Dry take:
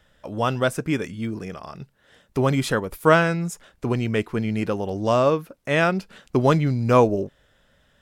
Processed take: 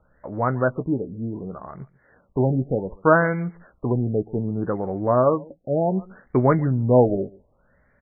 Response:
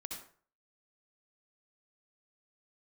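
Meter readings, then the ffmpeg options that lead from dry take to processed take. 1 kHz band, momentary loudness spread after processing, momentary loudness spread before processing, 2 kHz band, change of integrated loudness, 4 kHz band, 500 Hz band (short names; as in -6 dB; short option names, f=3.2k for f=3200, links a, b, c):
-1.0 dB, 15 LU, 14 LU, -3.5 dB, 0.0 dB, under -40 dB, +0.5 dB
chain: -filter_complex "[0:a]asplit=2[a][b];[b]adelay=16,volume=-12dB[c];[a][c]amix=inputs=2:normalize=0,asplit=2[d][e];[e]aecho=0:1:140:0.0708[f];[d][f]amix=inputs=2:normalize=0,afftfilt=real='re*lt(b*sr/1024,790*pow(2400/790,0.5+0.5*sin(2*PI*0.66*pts/sr)))':imag='im*lt(b*sr/1024,790*pow(2400/790,0.5+0.5*sin(2*PI*0.66*pts/sr)))':win_size=1024:overlap=0.75"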